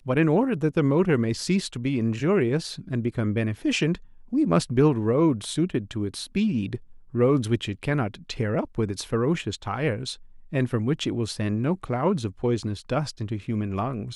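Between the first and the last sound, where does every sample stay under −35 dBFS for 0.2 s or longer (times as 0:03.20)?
0:03.96–0:04.33
0:06.77–0:07.14
0:10.14–0:10.53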